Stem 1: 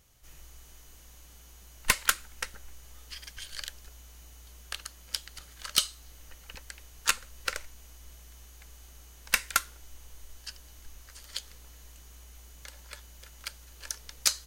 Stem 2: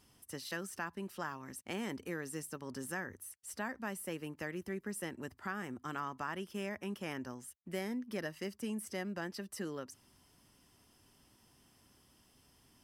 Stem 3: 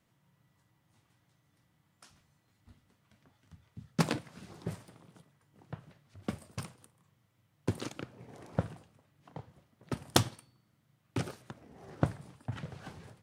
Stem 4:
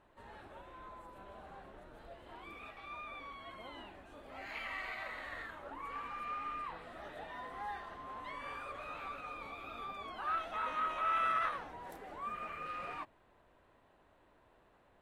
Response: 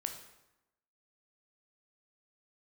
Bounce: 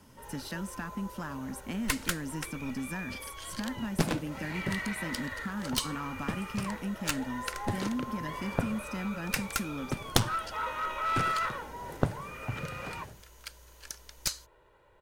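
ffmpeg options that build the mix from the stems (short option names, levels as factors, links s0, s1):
-filter_complex "[0:a]volume=0.596[s0];[1:a]lowshelf=f=320:t=q:w=3:g=6.5,acompressor=threshold=0.0158:ratio=3,volume=1.33[s1];[2:a]volume=1.41[s2];[3:a]aecho=1:1:2.1:0.78,acontrast=78,volume=0.596[s3];[s0][s1][s2][s3]amix=inputs=4:normalize=0,aeval=exprs='clip(val(0),-1,0.0398)':c=same"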